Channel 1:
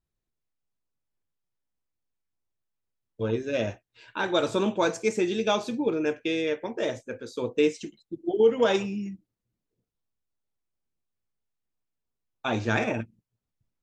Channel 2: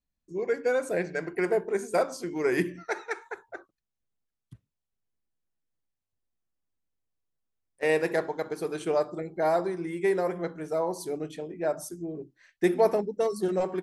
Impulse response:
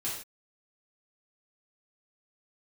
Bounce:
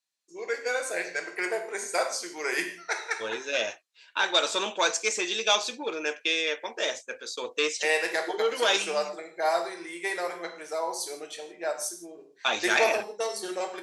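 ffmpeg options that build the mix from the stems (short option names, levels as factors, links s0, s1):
-filter_complex "[0:a]agate=range=0.316:threshold=0.00631:ratio=16:detection=peak,asoftclip=type=tanh:threshold=0.188,volume=1.12[s0];[1:a]volume=0.668,asplit=2[s1][s2];[s2]volume=0.562[s3];[2:a]atrim=start_sample=2205[s4];[s3][s4]afir=irnorm=-1:irlink=0[s5];[s0][s1][s5]amix=inputs=3:normalize=0,crystalizer=i=5:c=0,highpass=620,lowpass=6100"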